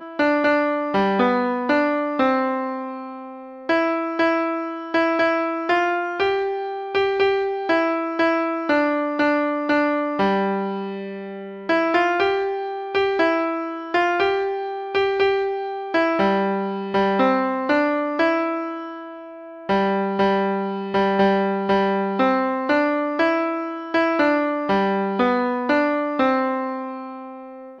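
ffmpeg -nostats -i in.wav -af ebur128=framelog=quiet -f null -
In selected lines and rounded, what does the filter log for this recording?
Integrated loudness:
  I:         -20.9 LUFS
  Threshold: -31.3 LUFS
Loudness range:
  LRA:         1.8 LU
  Threshold: -41.3 LUFS
  LRA low:   -22.2 LUFS
  LRA high:  -20.4 LUFS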